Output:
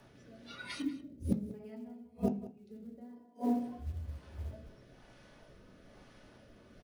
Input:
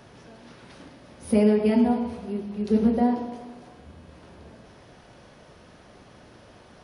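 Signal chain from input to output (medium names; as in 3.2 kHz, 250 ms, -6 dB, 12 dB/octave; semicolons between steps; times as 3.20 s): spectral noise reduction 19 dB; rotary cabinet horn 1.1 Hz; in parallel at 0 dB: peak limiter -17 dBFS, peak gain reduction 7 dB; 0.82–1.54 s: on the sum: FFT filter 130 Hz 0 dB, 310 Hz +5 dB, 1.2 kHz -24 dB; short-mantissa float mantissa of 4-bit; inverted gate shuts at -24 dBFS, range -39 dB; echo from a far wall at 32 m, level -15 dB; on a send at -4 dB: reverberation RT60 0.45 s, pre-delay 3 ms; on the sum: trim +5.5 dB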